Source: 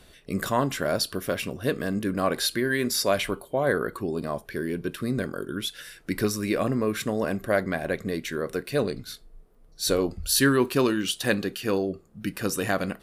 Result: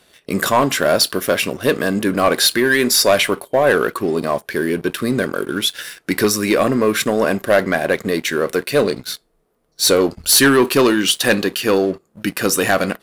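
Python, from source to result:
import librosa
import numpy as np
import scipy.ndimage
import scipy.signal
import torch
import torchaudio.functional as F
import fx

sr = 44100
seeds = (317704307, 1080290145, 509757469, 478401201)

y = fx.highpass(x, sr, hz=310.0, slope=6)
y = fx.leveller(y, sr, passes=2)
y = y * 10.0 ** (5.5 / 20.0)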